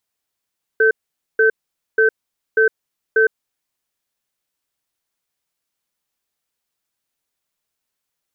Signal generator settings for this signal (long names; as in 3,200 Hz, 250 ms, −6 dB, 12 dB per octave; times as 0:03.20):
tone pair in a cadence 442 Hz, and 1,540 Hz, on 0.11 s, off 0.48 s, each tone −13 dBFS 2.77 s